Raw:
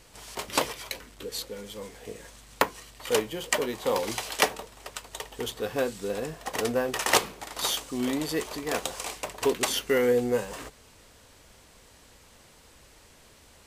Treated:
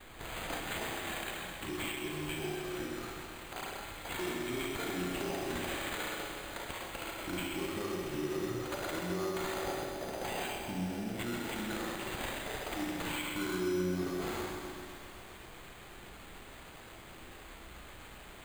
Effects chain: spectral gain 7.06–8.29, 1200–12000 Hz -10 dB; speed mistake 45 rpm record played at 33 rpm; compressor 4:1, threshold -38 dBFS, peak gain reduction 18.5 dB; low shelf 380 Hz -10 dB; gate with hold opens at -48 dBFS; reverb RT60 1.3 s, pre-delay 33 ms, DRR -1 dB; careless resampling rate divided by 8×, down none, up hold; limiter -32 dBFS, peak gain reduction 15.5 dB; low shelf 170 Hz +8 dB; lo-fi delay 0.129 s, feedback 80%, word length 10-bit, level -8 dB; gain +2.5 dB

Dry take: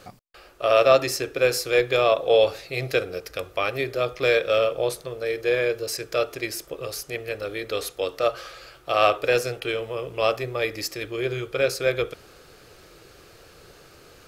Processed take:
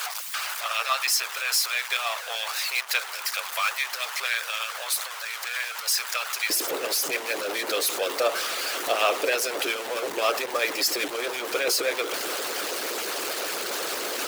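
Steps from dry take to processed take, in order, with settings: zero-crossing step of -20.5 dBFS; HPF 900 Hz 24 dB/oct, from 6.5 s 300 Hz; harmonic-percussive split harmonic -18 dB; gain +2 dB

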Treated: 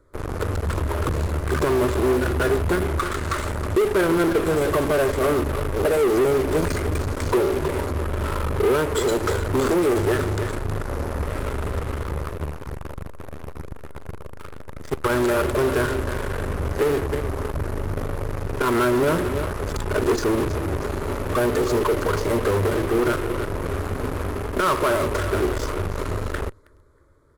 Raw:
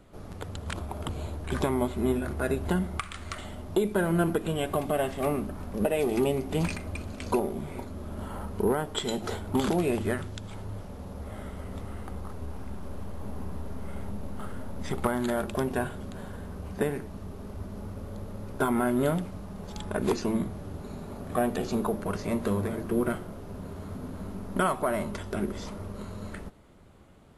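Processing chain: fixed phaser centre 750 Hz, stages 6; feedback echo 0.318 s, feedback 36%, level -14.5 dB; in parallel at -6 dB: fuzz box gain 45 dB, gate -44 dBFS; on the sum: high shelf 4200 Hz -6 dB; core saturation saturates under 140 Hz

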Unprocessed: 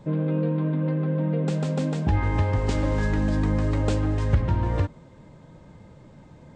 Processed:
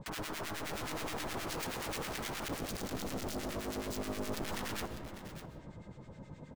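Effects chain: 2.48–4.42 Chebyshev band-stop 190–3600 Hz, order 5; de-hum 57.64 Hz, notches 16; compressor 6:1, threshold -30 dBFS, peak gain reduction 13.5 dB; wrapped overs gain 33 dB; harmonic tremolo 9.5 Hz, depth 100%, crossover 1300 Hz; echo 0.599 s -12 dB; on a send at -10 dB: reverb RT60 2.3 s, pre-delay 95 ms; on the sum: gain +2 dB

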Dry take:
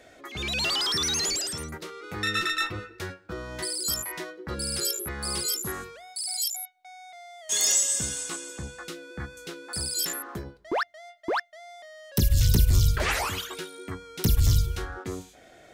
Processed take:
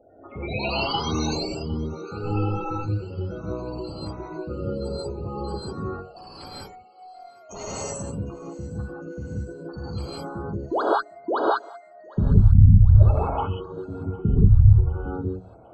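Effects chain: median filter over 25 samples; LPF 7300 Hz 12 dB/oct; notches 60/120/180/240/300/360/420 Hz; in parallel at -10.5 dB: bit-crush 6-bit; on the sum: spectral gate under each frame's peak -15 dB strong; on a send: thinning echo 0.756 s, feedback 69%, high-pass 460 Hz, level -22 dB; on the sum: non-linear reverb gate 0.21 s rising, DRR -6 dB

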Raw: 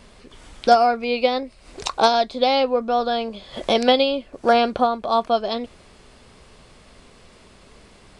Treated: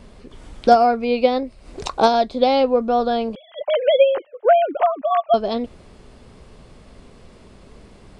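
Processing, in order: 3.35–5.34 sine-wave speech; tilt shelf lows +5 dB, about 790 Hz; gain +1 dB

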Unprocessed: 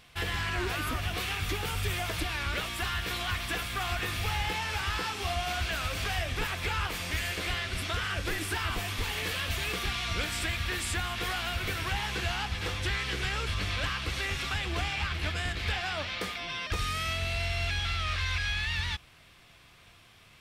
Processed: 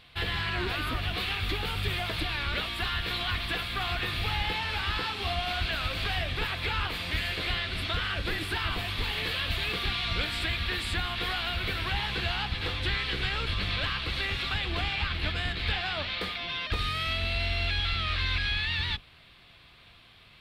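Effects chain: octaver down 1 oct, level -5 dB; resonant high shelf 5000 Hz -6.5 dB, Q 3

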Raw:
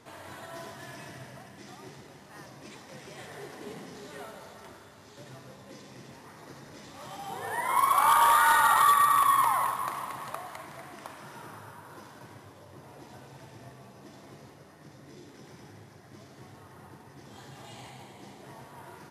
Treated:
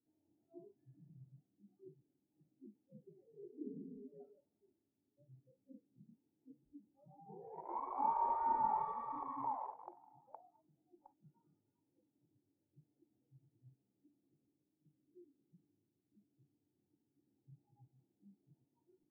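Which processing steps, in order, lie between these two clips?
Wiener smoothing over 41 samples; vocal tract filter u; spectral noise reduction 27 dB; gain +5.5 dB

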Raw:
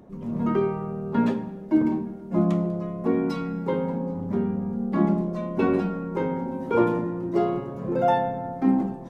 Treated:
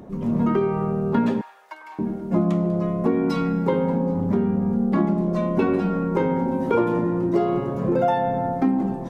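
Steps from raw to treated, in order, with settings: compressor 6:1, threshold -25 dBFS, peak gain reduction 10 dB; 1.41–1.99 HPF 960 Hz 24 dB/oct; gain +8 dB

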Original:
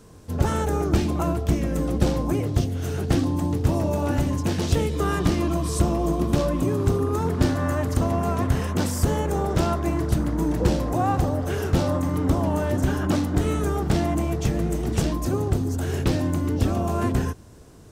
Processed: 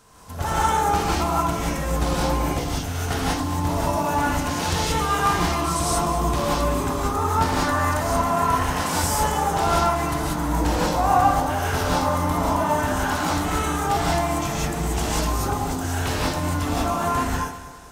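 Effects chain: resonant low shelf 580 Hz -9.5 dB, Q 1.5; on a send: echo with dull and thin repeats by turns 0.102 s, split 1200 Hz, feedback 66%, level -9 dB; on the sum: non-linear reverb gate 0.21 s rising, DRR -6 dB

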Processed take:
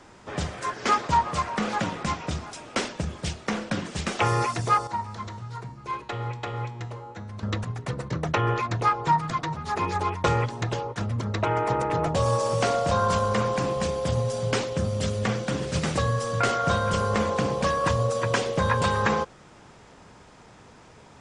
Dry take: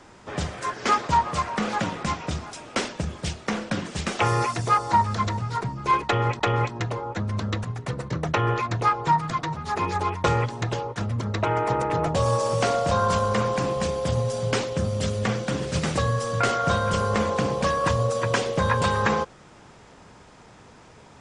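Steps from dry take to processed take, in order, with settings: 4.87–7.43 resonator 120 Hz, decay 1.2 s, harmonics all, mix 70%; gain -1 dB

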